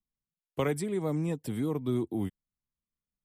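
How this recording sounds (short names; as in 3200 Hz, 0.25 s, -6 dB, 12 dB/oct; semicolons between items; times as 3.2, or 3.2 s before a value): noise floor -96 dBFS; spectral tilt -7.0 dB/oct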